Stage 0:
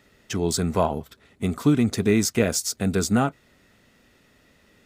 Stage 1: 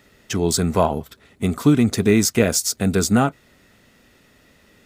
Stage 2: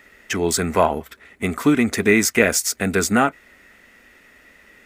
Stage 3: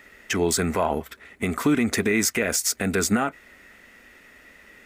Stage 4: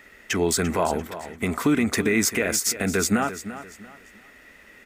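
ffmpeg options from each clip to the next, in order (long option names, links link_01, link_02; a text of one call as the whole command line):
ffmpeg -i in.wav -af "highshelf=frequency=9800:gain=3.5,volume=4dB" out.wav
ffmpeg -i in.wav -af "equalizer=frequency=125:width_type=o:width=1:gain=-12,equalizer=frequency=2000:width_type=o:width=1:gain=10,equalizer=frequency=4000:width_type=o:width=1:gain=-5,volume=1dB" out.wav
ffmpeg -i in.wav -af "alimiter=limit=-11.5dB:level=0:latency=1:release=93" out.wav
ffmpeg -i in.wav -af "aecho=1:1:343|686|1029:0.224|0.0694|0.0215" out.wav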